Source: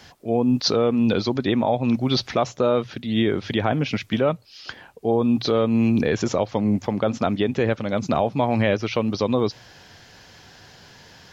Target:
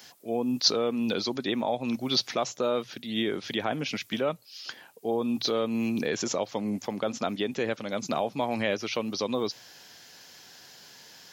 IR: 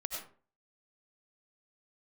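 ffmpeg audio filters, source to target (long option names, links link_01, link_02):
-af "highpass=190,aemphasis=mode=production:type=75kf,volume=-7.5dB"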